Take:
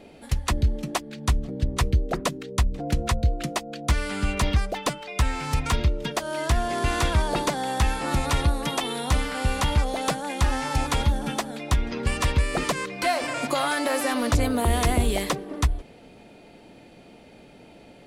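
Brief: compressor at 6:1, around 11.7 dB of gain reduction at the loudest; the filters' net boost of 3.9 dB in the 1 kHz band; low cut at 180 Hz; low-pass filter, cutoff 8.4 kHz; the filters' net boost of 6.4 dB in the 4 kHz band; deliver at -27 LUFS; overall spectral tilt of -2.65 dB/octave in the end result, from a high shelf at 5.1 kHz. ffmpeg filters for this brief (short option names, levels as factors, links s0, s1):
-af "highpass=180,lowpass=8400,equalizer=f=1000:t=o:g=4.5,equalizer=f=4000:t=o:g=5,highshelf=f=5100:g=7,acompressor=threshold=0.0282:ratio=6,volume=2.24"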